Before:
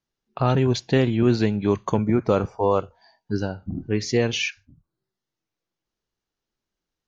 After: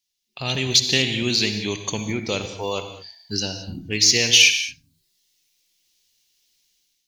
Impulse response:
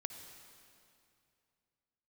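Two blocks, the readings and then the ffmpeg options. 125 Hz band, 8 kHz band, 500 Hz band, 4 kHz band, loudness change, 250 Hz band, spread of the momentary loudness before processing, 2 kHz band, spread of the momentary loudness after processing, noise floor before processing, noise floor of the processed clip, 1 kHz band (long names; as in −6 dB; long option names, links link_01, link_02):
−6.0 dB, can't be measured, −6.5 dB, +15.5 dB, +3.5 dB, −6.0 dB, 8 LU, +9.5 dB, 17 LU, below −85 dBFS, −76 dBFS, −7.5 dB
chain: -filter_complex "[0:a]dynaudnorm=framelen=180:gausssize=5:maxgain=12.5dB,aexciter=amount=9.8:drive=6.9:freq=2100[link_01];[1:a]atrim=start_sample=2205,afade=type=out:start_time=0.28:duration=0.01,atrim=end_sample=12789[link_02];[link_01][link_02]afir=irnorm=-1:irlink=0,volume=-10dB"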